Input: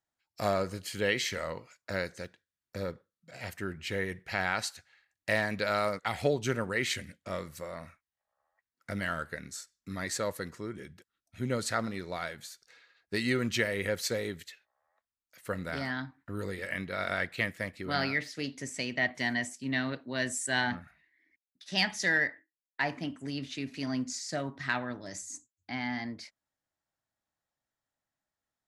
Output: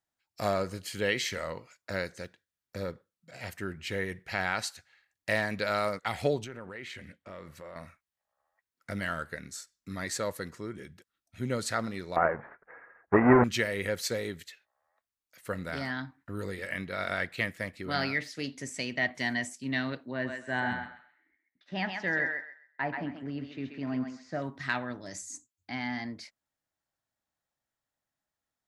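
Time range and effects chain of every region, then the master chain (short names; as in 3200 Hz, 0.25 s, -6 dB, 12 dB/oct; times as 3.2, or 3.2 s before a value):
6.44–7.76 tone controls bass -3 dB, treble -12 dB + transient shaper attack -4 dB, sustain +2 dB + compressor 3:1, threshold -41 dBFS
12.16–13.44 half-waves squared off + steep low-pass 2000 Hz 48 dB/oct + bell 750 Hz +10.5 dB 2.8 oct
20.11–24.42 LPF 1700 Hz + thinning echo 0.132 s, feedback 26%, high-pass 760 Hz, level -3 dB
whole clip: dry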